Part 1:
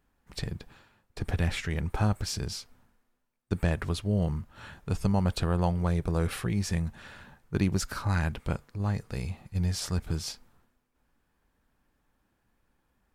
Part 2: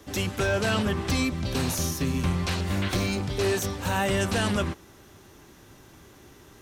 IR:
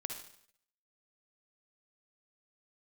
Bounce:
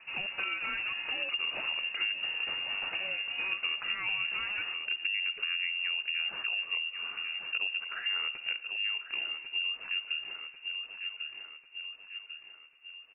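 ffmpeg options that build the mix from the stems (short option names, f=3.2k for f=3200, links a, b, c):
-filter_complex "[0:a]highpass=80,lowshelf=f=140:g=7,volume=0dB,asplit=3[a][b][c];[b]volume=-10dB[d];[c]volume=-11.5dB[e];[1:a]volume=-2.5dB[f];[2:a]atrim=start_sample=2205[g];[d][g]afir=irnorm=-1:irlink=0[h];[e]aecho=0:1:1095|2190|3285|4380|5475|6570|7665:1|0.47|0.221|0.104|0.0488|0.0229|0.0108[i];[a][f][h][i]amix=inputs=4:normalize=0,lowpass=f=2.5k:t=q:w=0.5098,lowpass=f=2.5k:t=q:w=0.6013,lowpass=f=2.5k:t=q:w=0.9,lowpass=f=2.5k:t=q:w=2.563,afreqshift=-2900,acompressor=threshold=-34dB:ratio=3"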